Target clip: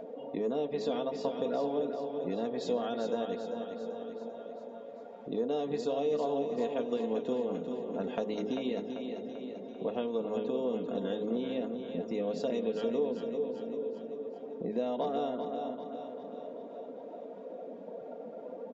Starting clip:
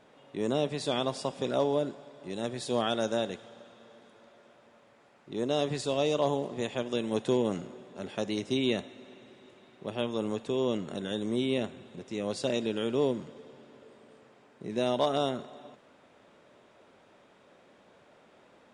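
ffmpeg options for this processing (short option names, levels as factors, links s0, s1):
-af "aresample=16000,aresample=44100,afftdn=nr=20:nf=-52,highshelf=f=5800:g=-3.5,aecho=1:1:4.3:0.62,acompressor=mode=upward:threshold=0.00631:ratio=2.5,bandreject=f=53.14:t=h:w=4,bandreject=f=106.28:t=h:w=4,bandreject=f=159.42:t=h:w=4,bandreject=f=212.56:t=h:w=4,bandreject=f=265.7:t=h:w=4,bandreject=f=318.84:t=h:w=4,bandreject=f=371.98:t=h:w=4,bandreject=f=425.12:t=h:w=4,bandreject=f=478.26:t=h:w=4,bandreject=f=531.4:t=h:w=4,bandreject=f=584.54:t=h:w=4,acompressor=threshold=0.01:ratio=6,equalizer=f=460:w=0.65:g=12.5,bandreject=f=400:w=12,aecho=1:1:392|784|1176|1568|1960|2352|2744:0.447|0.25|0.14|0.0784|0.0439|0.0246|0.0138"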